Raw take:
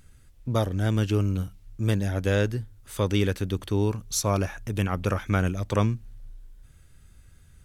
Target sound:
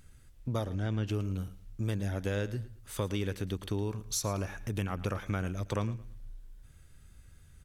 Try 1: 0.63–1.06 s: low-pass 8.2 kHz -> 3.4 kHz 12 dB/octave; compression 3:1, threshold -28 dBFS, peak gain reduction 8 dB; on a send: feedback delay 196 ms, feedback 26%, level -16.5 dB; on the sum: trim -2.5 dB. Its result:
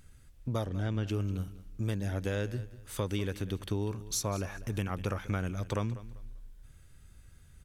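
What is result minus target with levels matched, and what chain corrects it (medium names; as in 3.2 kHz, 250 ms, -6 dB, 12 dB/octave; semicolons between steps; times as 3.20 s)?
echo 85 ms late
0.63–1.06 s: low-pass 8.2 kHz -> 3.4 kHz 12 dB/octave; compression 3:1, threshold -28 dBFS, peak gain reduction 8 dB; on a send: feedback delay 111 ms, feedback 26%, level -16.5 dB; on the sum: trim -2.5 dB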